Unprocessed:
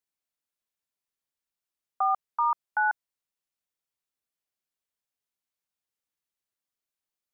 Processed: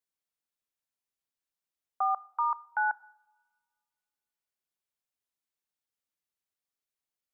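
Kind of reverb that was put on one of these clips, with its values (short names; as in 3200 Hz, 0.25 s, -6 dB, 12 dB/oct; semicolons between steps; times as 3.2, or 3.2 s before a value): two-slope reverb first 0.81 s, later 2.4 s, from -24 dB, DRR 19.5 dB; gain -3 dB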